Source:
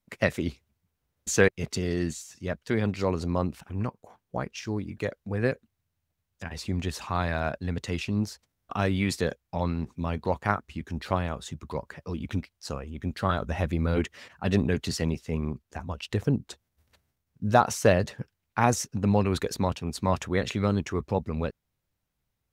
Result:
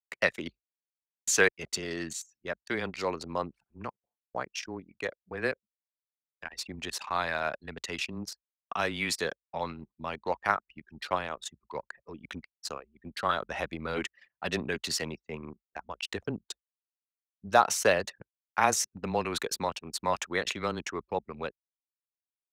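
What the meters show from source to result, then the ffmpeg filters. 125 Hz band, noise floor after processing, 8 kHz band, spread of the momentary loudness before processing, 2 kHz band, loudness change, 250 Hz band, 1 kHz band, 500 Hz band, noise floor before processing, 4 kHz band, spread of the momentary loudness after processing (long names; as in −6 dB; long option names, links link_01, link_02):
−15.5 dB, below −85 dBFS, +2.5 dB, 13 LU, +1.5 dB, −3.0 dB, −10.5 dB, −0.5 dB, −4.0 dB, −81 dBFS, +2.5 dB, 17 LU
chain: -af "afreqshift=-14,highpass=frequency=980:poles=1,agate=range=-33dB:threshold=-48dB:ratio=3:detection=peak,anlmdn=0.251,volume=3dB"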